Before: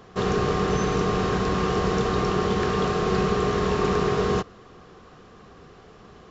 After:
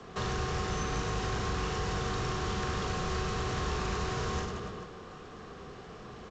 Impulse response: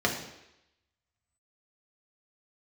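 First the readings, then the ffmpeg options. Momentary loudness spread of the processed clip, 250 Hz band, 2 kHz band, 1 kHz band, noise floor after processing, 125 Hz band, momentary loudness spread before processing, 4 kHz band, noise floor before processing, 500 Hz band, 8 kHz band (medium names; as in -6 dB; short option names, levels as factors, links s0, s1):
14 LU, -12.5 dB, -6.0 dB, -8.5 dB, -48 dBFS, -7.0 dB, 1 LU, -5.0 dB, -49 dBFS, -13.5 dB, no reading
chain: -filter_complex "[0:a]aecho=1:1:40|96|174.4|284.2|437.8:0.631|0.398|0.251|0.158|0.1,acrossover=split=130|560|5700[s0][s1][s2][s3];[s0]acompressor=threshold=0.0224:ratio=4[s4];[s1]acompressor=threshold=0.0316:ratio=4[s5];[s2]acompressor=threshold=0.0178:ratio=4[s6];[s3]acompressor=threshold=0.00501:ratio=4[s7];[s4][s5][s6][s7]amix=inputs=4:normalize=0,acrossover=split=120|930|2900[s8][s9][s10][s11];[s9]asoftclip=type=tanh:threshold=0.0141[s12];[s8][s12][s10][s11]amix=inputs=4:normalize=0" -ar 16000 -c:a g722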